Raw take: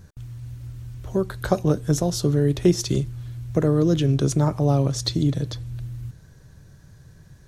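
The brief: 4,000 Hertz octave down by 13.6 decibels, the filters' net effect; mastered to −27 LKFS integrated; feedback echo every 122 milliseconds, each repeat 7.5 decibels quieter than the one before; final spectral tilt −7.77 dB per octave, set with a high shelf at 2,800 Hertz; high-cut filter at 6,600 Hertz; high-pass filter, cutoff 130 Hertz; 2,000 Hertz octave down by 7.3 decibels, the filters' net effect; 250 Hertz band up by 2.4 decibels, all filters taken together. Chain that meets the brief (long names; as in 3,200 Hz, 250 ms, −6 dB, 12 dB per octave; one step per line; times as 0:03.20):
high-pass filter 130 Hz
low-pass filter 6,600 Hz
parametric band 250 Hz +5 dB
parametric band 2,000 Hz −6.5 dB
high-shelf EQ 2,800 Hz −6.5 dB
parametric band 4,000 Hz −9 dB
repeating echo 122 ms, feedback 42%, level −7.5 dB
level −6 dB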